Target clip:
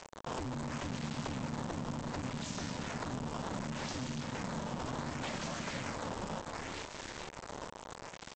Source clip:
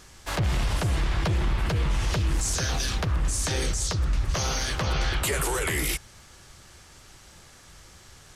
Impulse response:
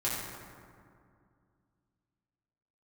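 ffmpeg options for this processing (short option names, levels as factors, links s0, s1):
-filter_complex "[0:a]asplit=8[s0][s1][s2][s3][s4][s5][s6][s7];[s1]adelay=440,afreqshift=-73,volume=0.708[s8];[s2]adelay=880,afreqshift=-146,volume=0.355[s9];[s3]adelay=1320,afreqshift=-219,volume=0.178[s10];[s4]adelay=1760,afreqshift=-292,volume=0.0881[s11];[s5]adelay=2200,afreqshift=-365,volume=0.0442[s12];[s6]adelay=2640,afreqshift=-438,volume=0.0221[s13];[s7]adelay=3080,afreqshift=-511,volume=0.0111[s14];[s0][s8][s9][s10][s11][s12][s13][s14]amix=inputs=8:normalize=0,asplit=2[s15][s16];[1:a]atrim=start_sample=2205[s17];[s16][s17]afir=irnorm=-1:irlink=0,volume=0.0531[s18];[s15][s18]amix=inputs=2:normalize=0,acrusher=samples=12:mix=1:aa=0.000001:lfo=1:lforange=19.2:lforate=0.68,acompressor=threshold=0.00794:ratio=3,adynamicequalizer=threshold=0.00112:dfrequency=170:dqfactor=1.4:tfrequency=170:tqfactor=1.4:attack=5:release=100:ratio=0.375:range=1.5:mode=cutabove:tftype=bell,acompressor=mode=upward:threshold=0.00501:ratio=2.5,aresample=16000,acrusher=bits=6:mix=0:aa=0.000001,aresample=44100,equalizer=f=740:w=2:g=7.5,aeval=exprs='val(0)*sin(2*PI*190*n/s)':c=same,volume=1.19"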